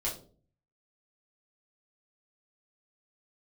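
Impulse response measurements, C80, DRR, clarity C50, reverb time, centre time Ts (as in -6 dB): 14.0 dB, -6.5 dB, 8.5 dB, 0.45 s, 25 ms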